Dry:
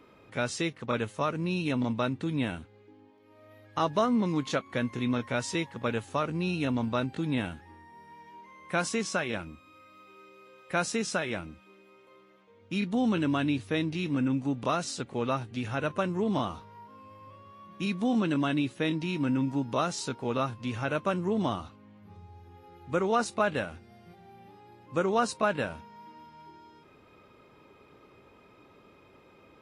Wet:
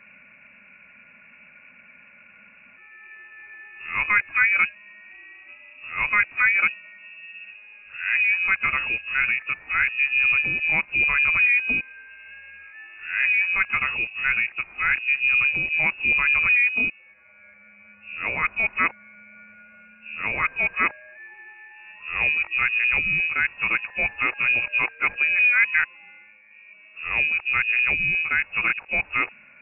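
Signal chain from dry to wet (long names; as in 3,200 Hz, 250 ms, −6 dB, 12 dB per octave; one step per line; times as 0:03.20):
played backwards from end to start
high-frequency loss of the air 280 metres
voice inversion scrambler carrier 2,700 Hz
level +7.5 dB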